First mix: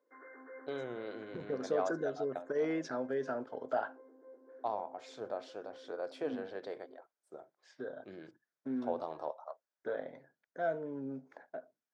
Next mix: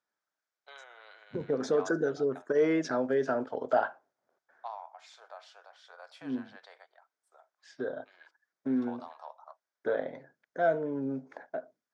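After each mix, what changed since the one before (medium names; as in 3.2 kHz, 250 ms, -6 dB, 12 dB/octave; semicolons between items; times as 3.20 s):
first voice: add high-pass 820 Hz 24 dB/octave; second voice +7.5 dB; background: muted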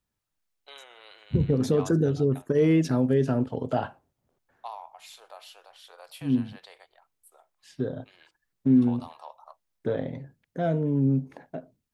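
first voice +3.0 dB; master: remove cabinet simulation 450–6200 Hz, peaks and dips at 650 Hz +4 dB, 1.5 kHz +8 dB, 2.8 kHz -10 dB, 4.1 kHz -5 dB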